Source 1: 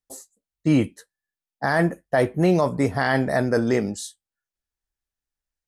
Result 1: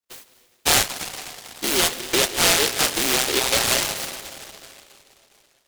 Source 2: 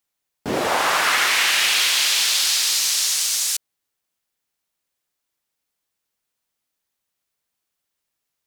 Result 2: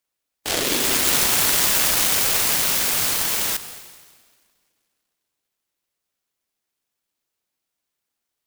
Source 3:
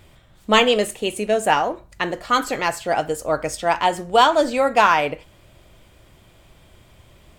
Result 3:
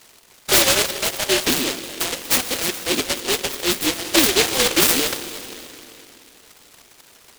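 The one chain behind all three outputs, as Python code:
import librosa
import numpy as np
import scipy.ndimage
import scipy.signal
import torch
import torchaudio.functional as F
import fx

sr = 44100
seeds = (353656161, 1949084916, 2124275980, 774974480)

y = fx.band_invert(x, sr, width_hz=1000)
y = scipy.signal.sosfilt(scipy.signal.butter(4, 250.0, 'highpass', fs=sr, output='sos'), y)
y = fx.rev_plate(y, sr, seeds[0], rt60_s=3.0, hf_ratio=0.5, predelay_ms=120, drr_db=11.0)
y = fx.noise_mod_delay(y, sr, seeds[1], noise_hz=3100.0, depth_ms=0.36)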